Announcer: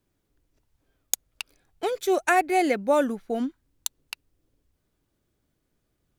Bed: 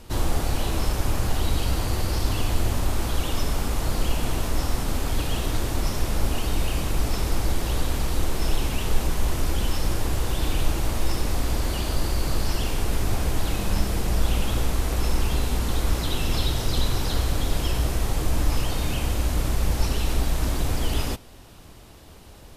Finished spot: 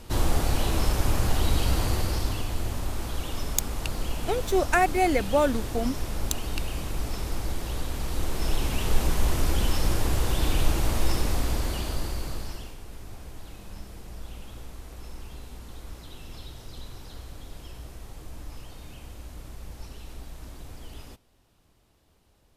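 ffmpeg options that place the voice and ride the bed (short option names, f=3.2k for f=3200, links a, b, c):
-filter_complex "[0:a]adelay=2450,volume=-1dB[a];[1:a]volume=6.5dB,afade=t=out:st=1.85:d=0.61:silence=0.473151,afade=t=in:st=7.93:d=1.17:silence=0.473151,afade=t=out:st=11.1:d=1.67:silence=0.125893[b];[a][b]amix=inputs=2:normalize=0"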